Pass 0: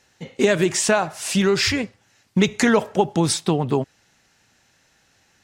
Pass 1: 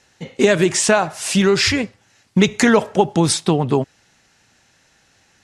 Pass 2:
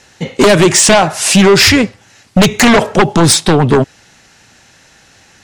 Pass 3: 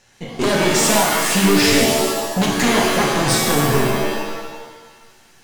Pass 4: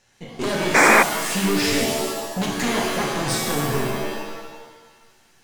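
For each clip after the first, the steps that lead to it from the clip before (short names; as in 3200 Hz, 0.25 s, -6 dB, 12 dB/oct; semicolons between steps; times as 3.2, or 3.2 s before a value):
steep low-pass 12000 Hz 48 dB/oct; gain +3.5 dB
sine folder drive 10 dB, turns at -1 dBFS; gain -2 dB
half-wave gain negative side -7 dB; shimmer reverb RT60 1.3 s, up +7 st, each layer -2 dB, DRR -1.5 dB; gain -10 dB
painted sound noise, 0.74–1.03, 220–2500 Hz -7 dBFS; gain -6.5 dB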